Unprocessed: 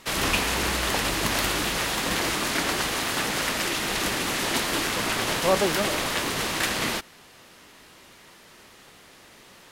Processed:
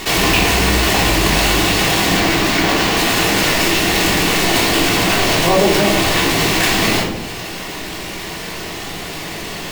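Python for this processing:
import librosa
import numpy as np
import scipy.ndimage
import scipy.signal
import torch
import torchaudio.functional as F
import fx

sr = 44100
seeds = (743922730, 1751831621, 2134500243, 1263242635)

y = fx.high_shelf(x, sr, hz=7700.0, db=-9.0, at=(2.17, 2.97))
y = fx.room_shoebox(y, sr, seeds[0], volume_m3=520.0, walls='furnished', distance_m=3.4)
y = np.repeat(scipy.signal.resample_poly(y, 1, 2), 2)[:len(y)]
y = fx.peak_eq(y, sr, hz=1300.0, db=-6.5, octaves=0.49)
y = fx.env_flatten(y, sr, amount_pct=50)
y = y * 10.0 ** (3.5 / 20.0)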